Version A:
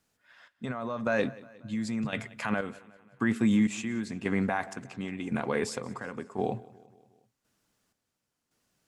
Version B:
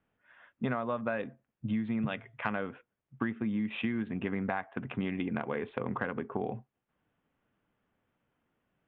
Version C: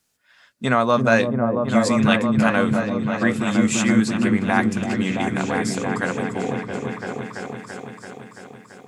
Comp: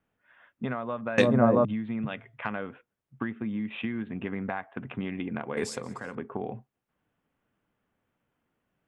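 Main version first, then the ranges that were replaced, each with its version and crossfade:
B
1.18–1.65 s: from C
5.57–6.15 s: from A

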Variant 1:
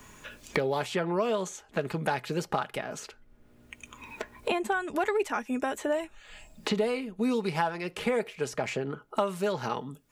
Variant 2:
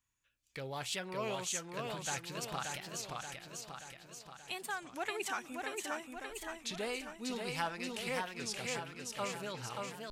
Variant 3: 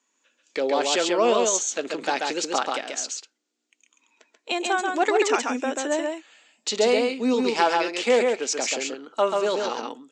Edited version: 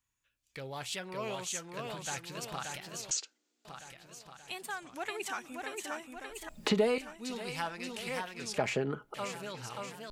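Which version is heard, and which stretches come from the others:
2
3.11–3.65 s: from 3
6.49–6.98 s: from 1
8.58–9.14 s: from 1

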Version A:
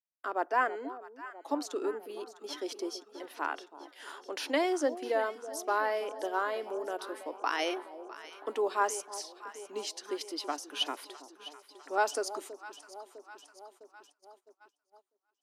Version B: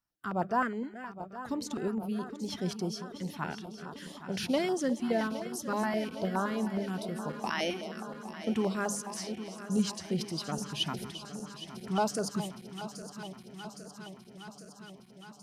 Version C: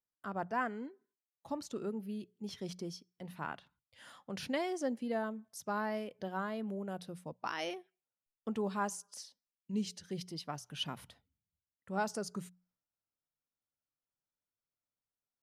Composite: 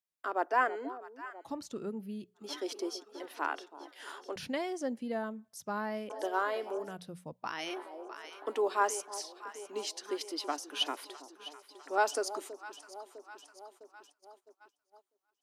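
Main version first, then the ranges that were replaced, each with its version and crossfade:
A
1.47–2.42 s: from C, crossfade 0.16 s
4.36–6.10 s: from C
6.89–7.70 s: from C, crossfade 0.24 s
not used: B

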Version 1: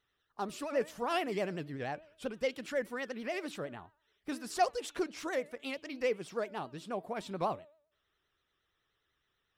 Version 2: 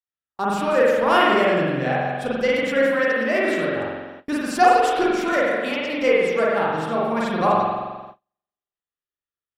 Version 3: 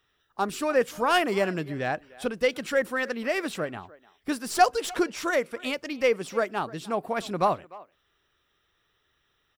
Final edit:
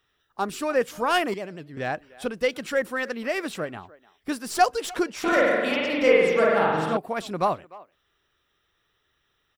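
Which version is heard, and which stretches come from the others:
3
1.34–1.77 s: from 1
5.24–6.97 s: from 2

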